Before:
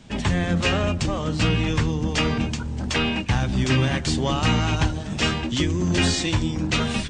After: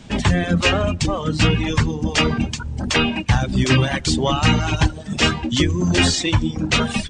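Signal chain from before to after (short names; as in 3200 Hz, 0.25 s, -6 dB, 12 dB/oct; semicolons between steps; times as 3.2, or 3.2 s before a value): reverb removal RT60 1.3 s; gain +6 dB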